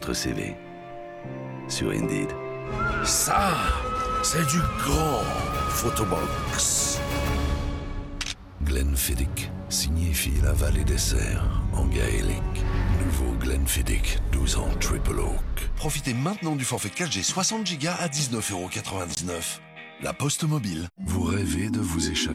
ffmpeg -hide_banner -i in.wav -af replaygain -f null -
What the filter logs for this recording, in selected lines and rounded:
track_gain = +8.9 dB
track_peak = 0.211